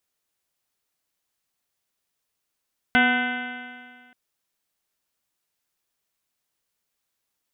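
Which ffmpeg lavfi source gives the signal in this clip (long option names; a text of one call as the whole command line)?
ffmpeg -f lavfi -i "aevalsrc='0.1*pow(10,-3*t/1.83)*sin(2*PI*245.21*t)+0.0251*pow(10,-3*t/1.83)*sin(2*PI*491.66*t)+0.0841*pow(10,-3*t/1.83)*sin(2*PI*740.6*t)+0.0266*pow(10,-3*t/1.83)*sin(2*PI*993.24*t)+0.0141*pow(10,-3*t/1.83)*sin(2*PI*1250.76*t)+0.141*pow(10,-3*t/1.83)*sin(2*PI*1514.31*t)+0.0251*pow(10,-3*t/1.83)*sin(2*PI*1785*t)+0.0891*pow(10,-3*t/1.83)*sin(2*PI*2063.87*t)+0.02*pow(10,-3*t/1.83)*sin(2*PI*2351.92*t)+0.0355*pow(10,-3*t/1.83)*sin(2*PI*2650.08*t)+0.0335*pow(10,-3*t/1.83)*sin(2*PI*2959.23*t)+0.0251*pow(10,-3*t/1.83)*sin(2*PI*3280.18*t)+0.01*pow(10,-3*t/1.83)*sin(2*PI*3613.68*t)':duration=1.18:sample_rate=44100" out.wav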